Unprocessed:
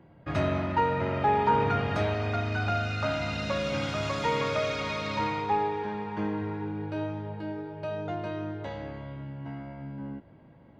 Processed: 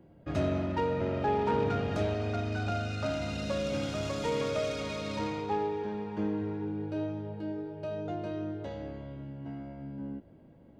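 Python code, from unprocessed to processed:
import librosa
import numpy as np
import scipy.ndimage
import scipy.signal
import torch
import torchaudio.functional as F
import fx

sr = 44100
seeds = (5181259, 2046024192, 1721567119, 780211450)

y = fx.self_delay(x, sr, depth_ms=0.086)
y = fx.graphic_eq(y, sr, hz=(125, 1000, 2000, 4000), db=(-6, -9, -8, -4))
y = F.gain(torch.from_numpy(y), 1.5).numpy()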